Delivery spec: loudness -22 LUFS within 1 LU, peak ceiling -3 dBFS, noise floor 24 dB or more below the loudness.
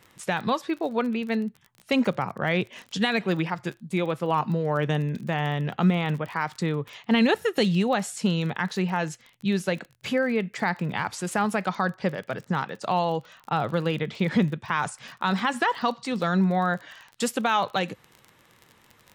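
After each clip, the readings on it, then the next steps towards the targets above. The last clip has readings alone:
ticks 32/s; loudness -26.5 LUFS; peak -11.0 dBFS; loudness target -22.0 LUFS
-> de-click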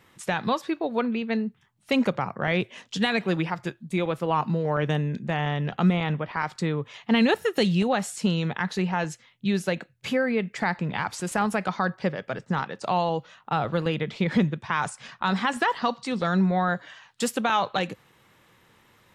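ticks 0/s; loudness -26.5 LUFS; peak -11.0 dBFS; loudness target -22.0 LUFS
-> gain +4.5 dB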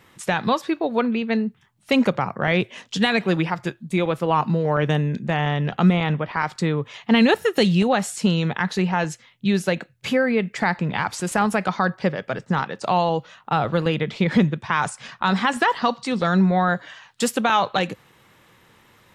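loudness -22.0 LUFS; peak -6.5 dBFS; noise floor -58 dBFS

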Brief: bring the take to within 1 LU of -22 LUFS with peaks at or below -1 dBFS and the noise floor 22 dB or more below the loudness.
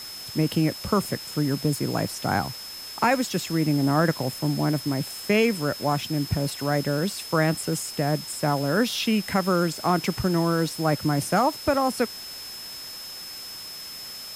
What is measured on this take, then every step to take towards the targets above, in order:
steady tone 5200 Hz; tone level -37 dBFS; noise floor -38 dBFS; noise floor target -48 dBFS; loudness -25.5 LUFS; peak -8.0 dBFS; loudness target -22.0 LUFS
-> notch 5200 Hz, Q 30; denoiser 10 dB, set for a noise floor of -38 dBFS; gain +3.5 dB

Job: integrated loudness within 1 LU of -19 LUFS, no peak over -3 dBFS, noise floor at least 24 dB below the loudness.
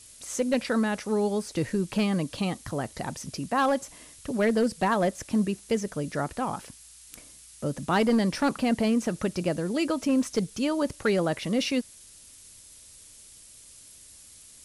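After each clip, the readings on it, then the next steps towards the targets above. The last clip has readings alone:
clipped 0.4%; flat tops at -17.0 dBFS; noise floor -51 dBFS; noise floor target -52 dBFS; loudness -27.5 LUFS; peak -17.0 dBFS; loudness target -19.0 LUFS
-> clip repair -17 dBFS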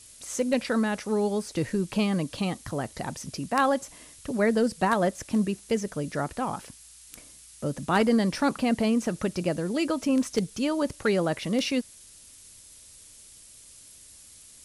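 clipped 0.0%; noise floor -51 dBFS; noise floor target -52 dBFS
-> noise print and reduce 6 dB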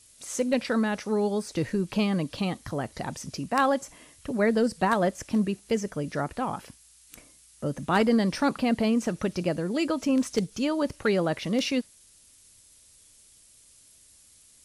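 noise floor -57 dBFS; loudness -27.5 LUFS; peak -8.5 dBFS; loudness target -19.0 LUFS
-> gain +8.5 dB; limiter -3 dBFS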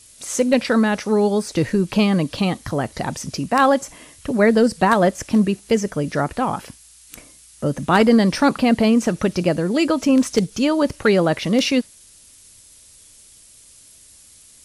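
loudness -19.0 LUFS; peak -3.0 dBFS; noise floor -48 dBFS

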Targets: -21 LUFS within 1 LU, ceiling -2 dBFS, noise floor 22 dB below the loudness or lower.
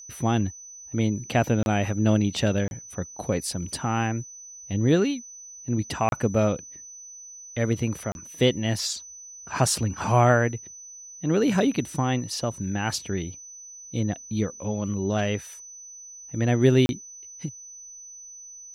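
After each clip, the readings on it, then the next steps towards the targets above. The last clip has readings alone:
dropouts 5; longest dropout 31 ms; steady tone 6000 Hz; tone level -41 dBFS; loudness -25.5 LUFS; peak -7.0 dBFS; loudness target -21.0 LUFS
-> interpolate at 1.63/2.68/6.09/8.12/16.86, 31 ms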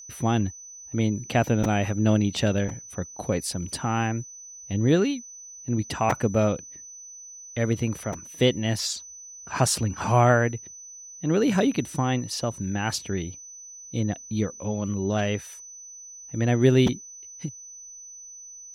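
dropouts 0; steady tone 6000 Hz; tone level -41 dBFS
-> notch 6000 Hz, Q 30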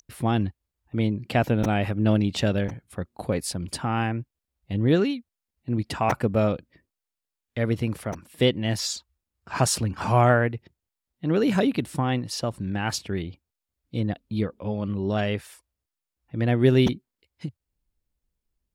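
steady tone none; loudness -25.5 LUFS; peak -7.0 dBFS; loudness target -21.0 LUFS
-> gain +4.5 dB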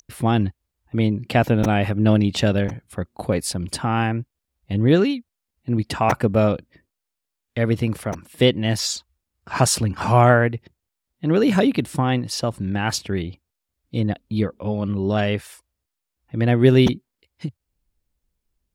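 loudness -21.0 LUFS; peak -2.5 dBFS; noise floor -82 dBFS

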